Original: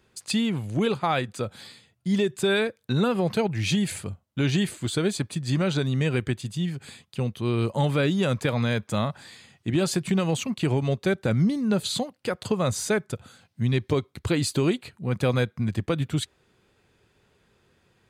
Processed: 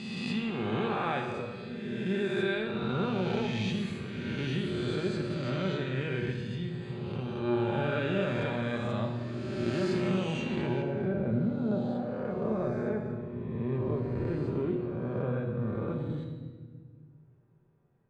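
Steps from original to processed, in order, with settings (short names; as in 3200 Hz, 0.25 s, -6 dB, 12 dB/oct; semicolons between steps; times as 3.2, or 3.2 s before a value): spectral swells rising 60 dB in 2.05 s; LPF 3200 Hz 12 dB/oct, from 10.82 s 1000 Hz; resonator 120 Hz, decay 1.1 s, harmonics all, mix 80%; shoebox room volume 1800 m³, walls mixed, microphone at 1.2 m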